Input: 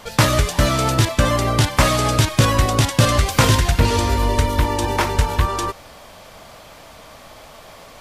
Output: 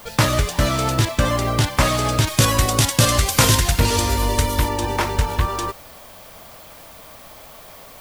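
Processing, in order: 2.27–4.69 s: treble shelf 4.8 kHz +10.5 dB; added noise violet -44 dBFS; trim -2 dB

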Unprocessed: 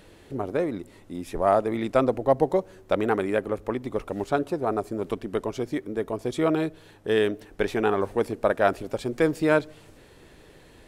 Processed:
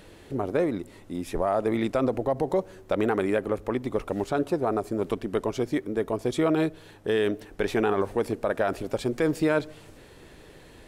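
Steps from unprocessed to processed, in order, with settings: peak limiter -16.5 dBFS, peak gain reduction 9.5 dB; trim +2 dB

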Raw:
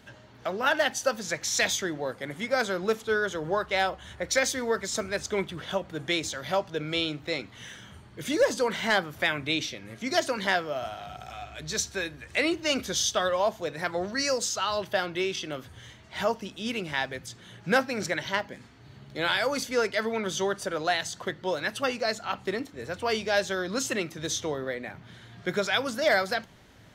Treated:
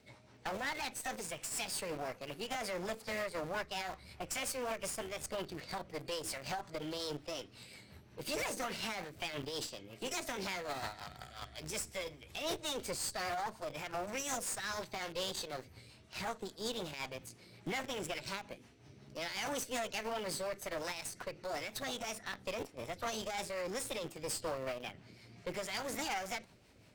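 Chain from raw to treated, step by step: peak limiter -22 dBFS, peak gain reduction 8.5 dB; rotary cabinet horn 5.5 Hz; in parallel at -11.5 dB: word length cut 6-bit, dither none; on the sum: formant shift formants +5 st; valve stage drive 29 dB, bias 0.75; trim -2.5 dB

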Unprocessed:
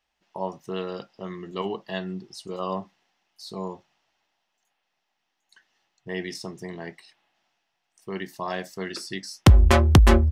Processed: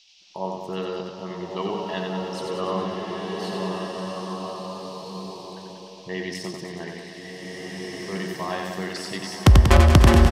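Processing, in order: band noise 2.5–5.8 kHz -57 dBFS; reverse bouncing-ball echo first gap 90 ms, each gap 1.1×, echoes 5; swelling reverb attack 1780 ms, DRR -0.5 dB

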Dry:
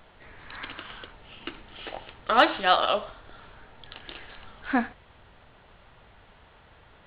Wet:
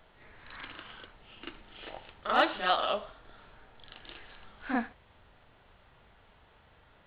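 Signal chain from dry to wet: reverse echo 39 ms -6 dB; trim -7 dB

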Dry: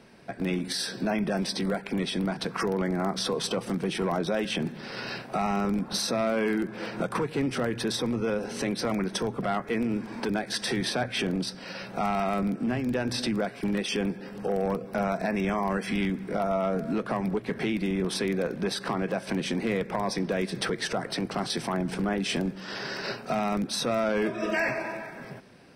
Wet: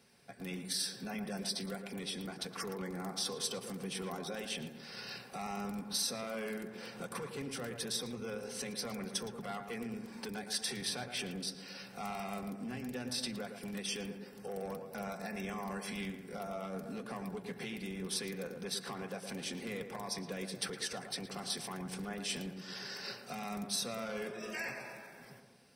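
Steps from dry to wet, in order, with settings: pre-emphasis filter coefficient 0.8; comb of notches 320 Hz; on a send: tape echo 114 ms, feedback 63%, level -6 dB, low-pass 1.4 kHz

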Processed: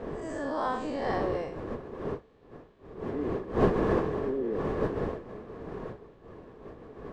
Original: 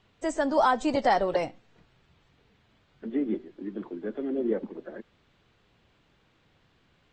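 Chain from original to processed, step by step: spectral blur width 161 ms; wind noise 460 Hz -31 dBFS; small resonant body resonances 430/1100/1700 Hz, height 9 dB, ringing for 25 ms; trim -5.5 dB

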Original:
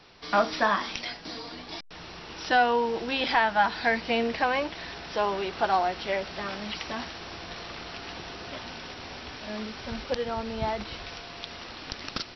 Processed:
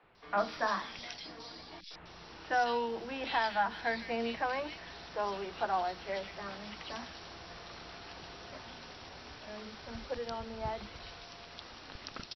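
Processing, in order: three bands offset in time mids, lows, highs 30/150 ms, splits 270/2600 Hz; trim -7.5 dB

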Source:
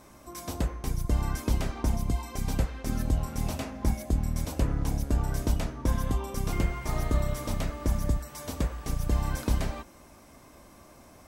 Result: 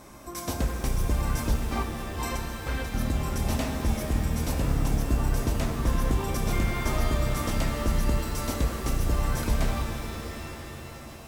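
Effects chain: peak limiter -22 dBFS, peak gain reduction 9 dB; 1.56–2.94 s: compressor with a negative ratio -37 dBFS, ratio -0.5; pitch-shifted reverb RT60 3.1 s, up +7 st, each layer -2 dB, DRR 5 dB; trim +4.5 dB

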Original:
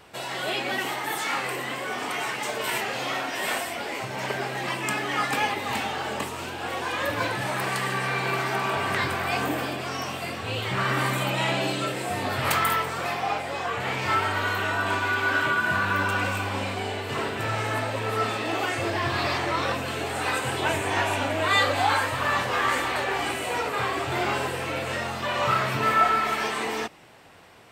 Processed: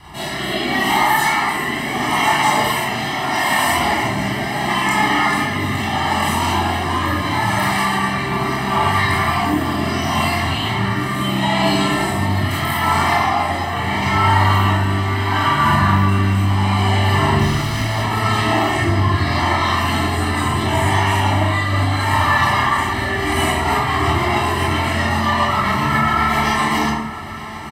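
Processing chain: 17.39–17.99 s: self-modulated delay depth 0.43 ms; bass shelf 160 Hz +7.5 dB; band-stop 6.7 kHz, Q 9.8; comb 1 ms, depth 100%; peak limiter -20 dBFS, peak gain reduction 13.5 dB; rotary cabinet horn 0.75 Hz, later 7.5 Hz, at 23.16 s; echo that smears into a reverb 997 ms, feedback 58%, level -16 dB; reverberation RT60 0.90 s, pre-delay 17 ms, DRR -8 dB; trim +5.5 dB

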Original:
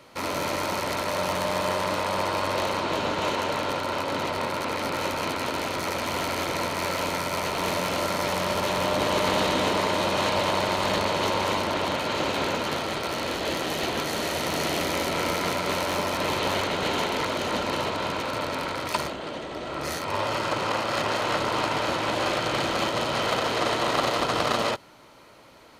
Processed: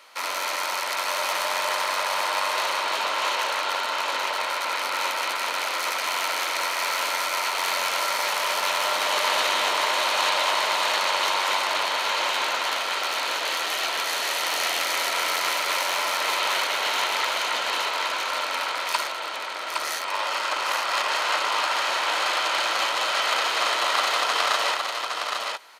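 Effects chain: high-pass 980 Hz 12 dB/octave; on a send: delay 813 ms -4.5 dB; on the sum: trim +4 dB

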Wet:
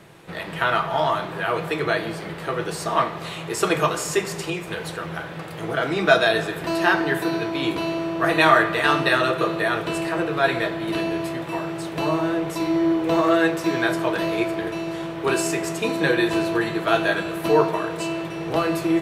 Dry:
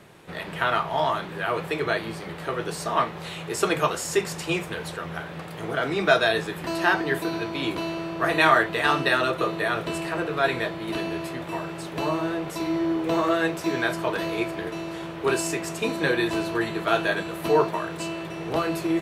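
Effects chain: 4.21–4.68 s: compression 3:1, threshold -29 dBFS, peak gain reduction 6.5 dB; simulated room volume 2900 m³, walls mixed, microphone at 0.69 m; trim +2 dB

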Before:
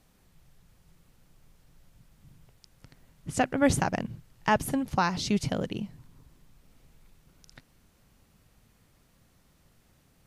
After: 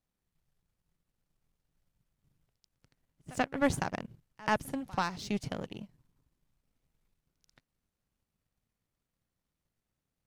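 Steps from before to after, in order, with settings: power-law waveshaper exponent 1.4; pre-echo 86 ms -21 dB; trim -2.5 dB

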